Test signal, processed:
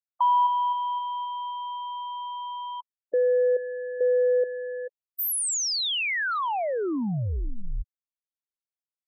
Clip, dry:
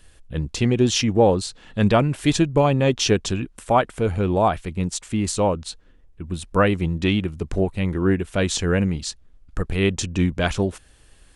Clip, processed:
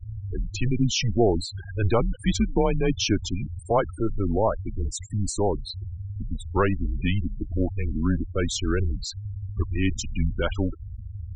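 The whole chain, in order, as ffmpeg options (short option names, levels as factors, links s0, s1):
-af "aeval=exprs='val(0)+0.5*0.0794*sgn(val(0))':c=same,afreqshift=-110,afftfilt=real='re*gte(hypot(re,im),0.126)':imag='im*gte(hypot(re,im),0.126)':win_size=1024:overlap=0.75,volume=0.531"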